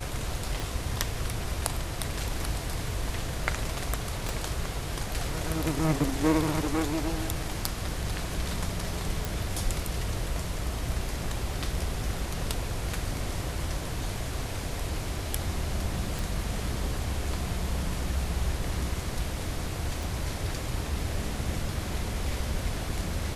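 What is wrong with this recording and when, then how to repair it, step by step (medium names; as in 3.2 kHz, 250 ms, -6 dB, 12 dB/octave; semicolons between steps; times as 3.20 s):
0.60 s: pop
4.29 s: pop
9.25 s: pop
16.19 s: pop
20.03 s: pop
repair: de-click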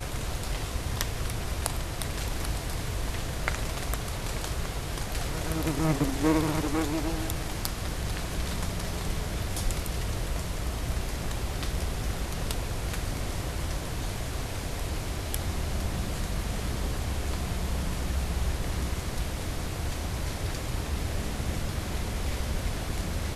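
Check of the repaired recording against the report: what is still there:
0.60 s: pop
4.29 s: pop
20.03 s: pop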